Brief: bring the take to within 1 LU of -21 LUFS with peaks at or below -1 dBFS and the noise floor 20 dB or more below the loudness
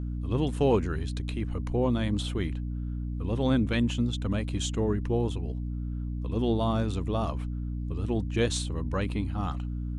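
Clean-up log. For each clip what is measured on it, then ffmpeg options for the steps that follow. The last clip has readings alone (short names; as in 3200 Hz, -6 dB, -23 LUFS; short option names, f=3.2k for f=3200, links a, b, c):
hum 60 Hz; harmonics up to 300 Hz; hum level -30 dBFS; loudness -29.5 LUFS; peak -13.0 dBFS; loudness target -21.0 LUFS
-> -af "bandreject=f=60:t=h:w=6,bandreject=f=120:t=h:w=6,bandreject=f=180:t=h:w=6,bandreject=f=240:t=h:w=6,bandreject=f=300:t=h:w=6"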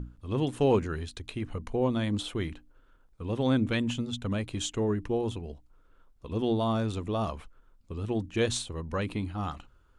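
hum none; loudness -30.5 LUFS; peak -14.0 dBFS; loudness target -21.0 LUFS
-> -af "volume=9.5dB"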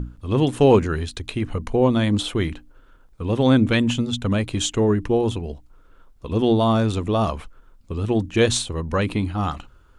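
loudness -21.0 LUFS; peak -4.5 dBFS; noise floor -52 dBFS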